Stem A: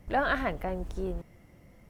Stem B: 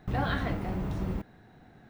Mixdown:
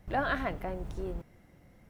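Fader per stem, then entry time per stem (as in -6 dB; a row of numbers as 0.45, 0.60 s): -3.5, -13.0 dB; 0.00, 0.00 s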